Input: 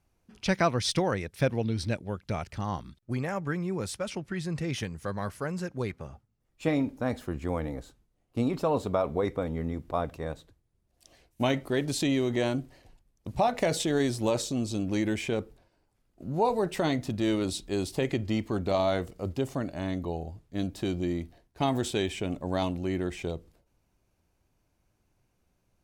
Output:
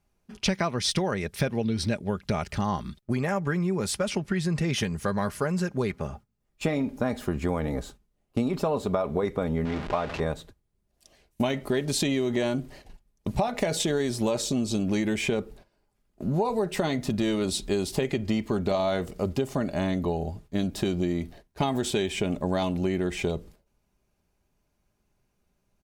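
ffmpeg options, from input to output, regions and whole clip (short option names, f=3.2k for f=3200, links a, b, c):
-filter_complex "[0:a]asettb=1/sr,asplit=3[a][b][c];[a]atrim=end=9.654[d];[b]atrim=start=9.65:end=10.2,asetpts=PTS-STARTPTS,afade=t=in:d=0.004:c=qsin,afade=t=out:st=0.546:d=0.004:c=qsin,aeval=exprs='val(0)+0.5*0.0224*sgn(val(0))':c=same,lowpass=3.5k,lowshelf=f=450:g=-8.5[e];[c]atrim=start=10.196[f];[d][e]acrossfade=d=0.004:c1=hsin:c2=qsin[g];[g][f]acrossfade=d=0.004:c1=qsin:c2=hsin,agate=range=-10dB:threshold=-54dB:ratio=16:detection=peak,aecho=1:1:4.9:0.36,acompressor=threshold=-32dB:ratio=6,volume=9dB"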